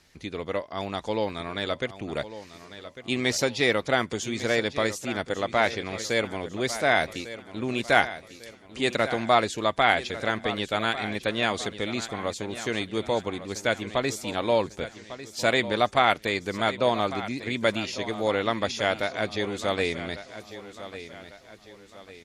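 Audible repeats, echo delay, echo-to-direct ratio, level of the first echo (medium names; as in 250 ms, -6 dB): 3, 1149 ms, -12.5 dB, -13.5 dB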